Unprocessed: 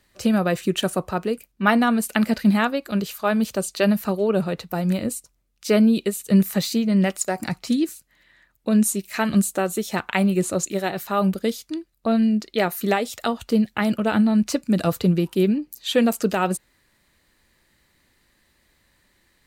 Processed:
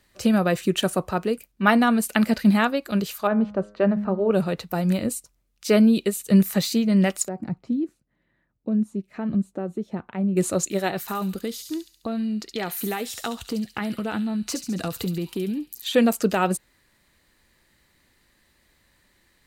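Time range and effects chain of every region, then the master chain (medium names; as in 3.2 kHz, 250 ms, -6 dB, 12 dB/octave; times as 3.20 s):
3.27–4.31 s: low-pass 1.3 kHz + de-hum 103.4 Hz, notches 21
7.28–10.37 s: compression 2:1, threshold -21 dBFS + band-pass filter 180 Hz, Q 0.62
11.01–15.95 s: band-stop 590 Hz, Q 6.9 + compression 5:1, threshold -24 dBFS + feedback echo behind a high-pass 69 ms, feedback 55%, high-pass 3.7 kHz, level -4 dB
whole clip: none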